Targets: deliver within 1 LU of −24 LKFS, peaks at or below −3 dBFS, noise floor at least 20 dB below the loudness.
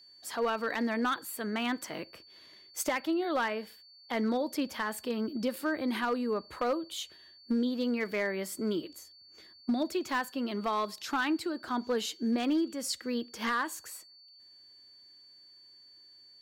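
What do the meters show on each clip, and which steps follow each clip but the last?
share of clipped samples 0.6%; peaks flattened at −23.0 dBFS; interfering tone 4,500 Hz; level of the tone −54 dBFS; integrated loudness −32.5 LKFS; sample peak −23.0 dBFS; target loudness −24.0 LKFS
→ clipped peaks rebuilt −23 dBFS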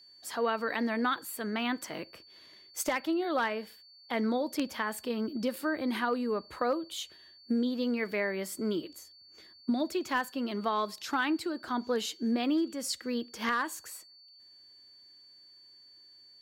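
share of clipped samples 0.0%; interfering tone 4,500 Hz; level of the tone −54 dBFS
→ notch filter 4,500 Hz, Q 30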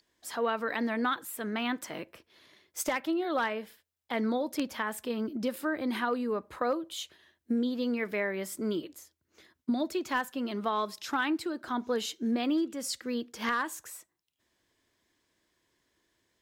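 interfering tone none found; integrated loudness −32.5 LKFS; sample peak −14.5 dBFS; target loudness −24.0 LKFS
→ level +8.5 dB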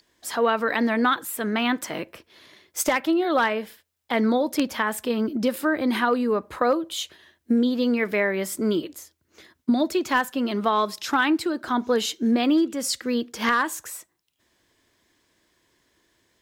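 integrated loudness −24.0 LKFS; sample peak −6.0 dBFS; background noise floor −73 dBFS

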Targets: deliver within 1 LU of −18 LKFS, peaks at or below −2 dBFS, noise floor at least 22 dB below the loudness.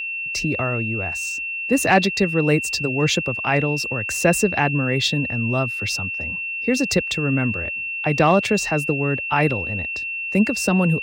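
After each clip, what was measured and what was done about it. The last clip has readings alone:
interfering tone 2,700 Hz; level of the tone −25 dBFS; integrated loudness −20.5 LKFS; sample peak −4.5 dBFS; target loudness −18.0 LKFS
→ notch filter 2,700 Hz, Q 30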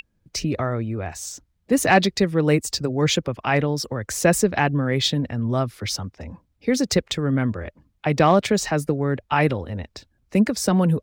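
interfering tone none found; integrated loudness −22.0 LKFS; sample peak −4.5 dBFS; target loudness −18.0 LKFS
→ level +4 dB
brickwall limiter −2 dBFS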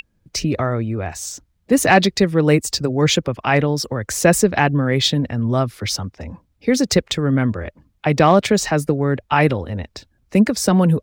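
integrated loudness −18.0 LKFS; sample peak −2.0 dBFS; background noise floor −65 dBFS

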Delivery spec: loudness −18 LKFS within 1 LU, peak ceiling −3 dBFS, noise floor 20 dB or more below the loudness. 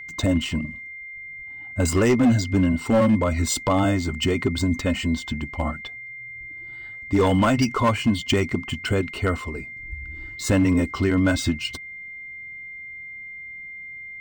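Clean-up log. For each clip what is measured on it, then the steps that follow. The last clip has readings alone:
share of clipped samples 1.1%; peaks flattened at −13.0 dBFS; interfering tone 2,100 Hz; level of the tone −35 dBFS; integrated loudness −22.5 LKFS; sample peak −13.0 dBFS; target loudness −18.0 LKFS
→ clipped peaks rebuilt −13 dBFS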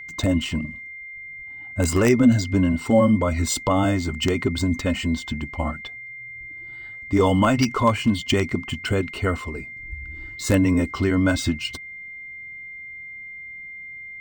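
share of clipped samples 0.0%; interfering tone 2,100 Hz; level of the tone −35 dBFS
→ notch filter 2,100 Hz, Q 30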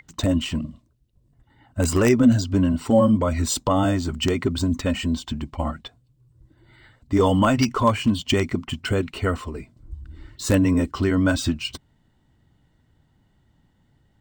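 interfering tone none found; integrated loudness −22.0 LKFS; sample peak −4.0 dBFS; target loudness −18.0 LKFS
→ level +4 dB
brickwall limiter −3 dBFS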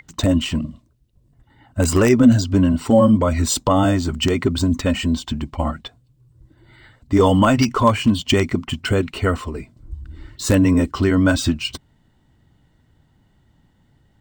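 integrated loudness −18.0 LKFS; sample peak −3.0 dBFS; background noise floor −60 dBFS

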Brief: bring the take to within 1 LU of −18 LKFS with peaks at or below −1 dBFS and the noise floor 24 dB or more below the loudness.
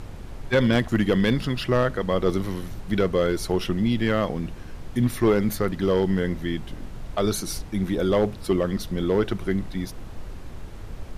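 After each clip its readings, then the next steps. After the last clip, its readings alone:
share of clipped samples 0.4%; peaks flattened at −12.5 dBFS; background noise floor −38 dBFS; target noise floor −49 dBFS; integrated loudness −24.5 LKFS; sample peak −12.5 dBFS; target loudness −18.0 LKFS
→ clipped peaks rebuilt −12.5 dBFS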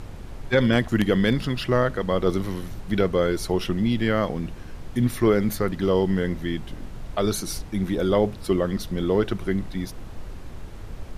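share of clipped samples 0.0%; background noise floor −38 dBFS; target noise floor −48 dBFS
→ noise reduction from a noise print 10 dB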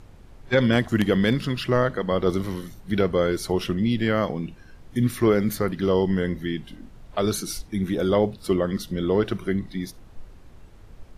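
background noise floor −47 dBFS; target noise floor −48 dBFS
→ noise reduction from a noise print 6 dB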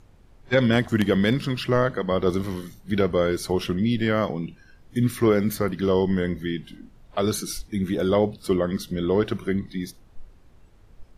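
background noise floor −53 dBFS; integrated loudness −24.0 LKFS; sample peak −5.5 dBFS; target loudness −18.0 LKFS
→ level +6 dB
brickwall limiter −1 dBFS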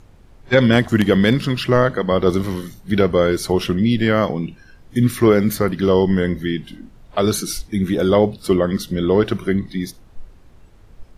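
integrated loudness −18.0 LKFS; sample peak −1.0 dBFS; background noise floor −47 dBFS

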